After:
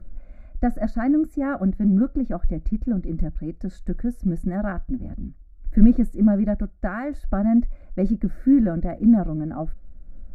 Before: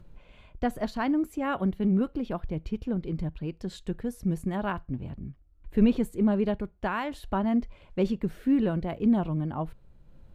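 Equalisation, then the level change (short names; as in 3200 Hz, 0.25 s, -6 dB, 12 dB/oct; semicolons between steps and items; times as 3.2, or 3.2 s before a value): tilt -2.5 dB/oct; fixed phaser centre 640 Hz, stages 8; notch 2600 Hz, Q 9; +3.0 dB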